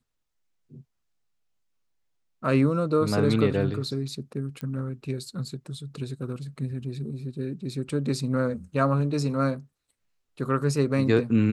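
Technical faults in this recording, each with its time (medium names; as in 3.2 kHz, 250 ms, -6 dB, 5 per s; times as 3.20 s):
4.61 s: pop -22 dBFS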